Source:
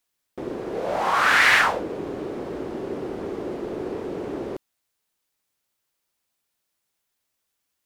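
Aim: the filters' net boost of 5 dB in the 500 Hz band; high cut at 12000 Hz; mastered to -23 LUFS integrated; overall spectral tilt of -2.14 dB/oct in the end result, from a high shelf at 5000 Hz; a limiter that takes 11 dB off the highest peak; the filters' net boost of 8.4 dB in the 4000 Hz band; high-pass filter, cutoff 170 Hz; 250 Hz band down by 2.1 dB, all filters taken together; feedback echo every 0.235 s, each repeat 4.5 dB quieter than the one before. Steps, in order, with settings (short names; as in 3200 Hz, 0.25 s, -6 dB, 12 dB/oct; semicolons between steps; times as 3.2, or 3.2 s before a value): HPF 170 Hz; LPF 12000 Hz; bell 250 Hz -8 dB; bell 500 Hz +8.5 dB; bell 4000 Hz +7.5 dB; high shelf 5000 Hz +8 dB; limiter -11.5 dBFS; feedback echo 0.235 s, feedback 60%, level -4.5 dB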